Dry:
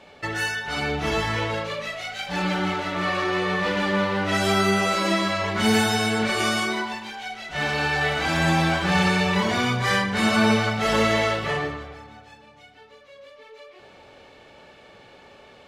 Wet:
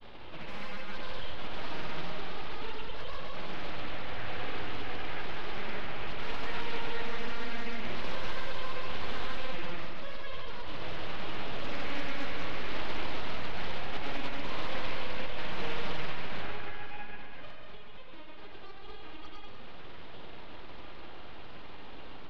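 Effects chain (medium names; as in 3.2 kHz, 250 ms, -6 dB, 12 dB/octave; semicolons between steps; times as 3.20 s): spectral noise reduction 13 dB; wide varispeed 0.703×; high-pass 1.1 kHz 12 dB/octave; upward compressor, threshold -31 dBFS; overdrive pedal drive 12 dB, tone 5.8 kHz, clips at -25.5 dBFS; granulator 100 ms, grains 20 per s, pitch spread up and down by 0 st; full-wave rectifier; distance through air 390 m; multi-head delay 64 ms, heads second and third, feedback 55%, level -8.5 dB; loudspeaker Doppler distortion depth 0.45 ms; trim +1 dB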